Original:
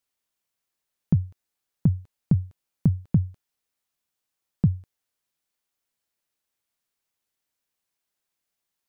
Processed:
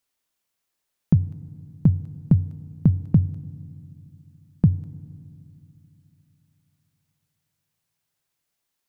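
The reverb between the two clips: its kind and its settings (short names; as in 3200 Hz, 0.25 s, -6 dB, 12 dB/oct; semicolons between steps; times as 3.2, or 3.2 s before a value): FDN reverb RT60 2.5 s, low-frequency decay 1.4×, high-frequency decay 1×, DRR 17.5 dB; gain +3.5 dB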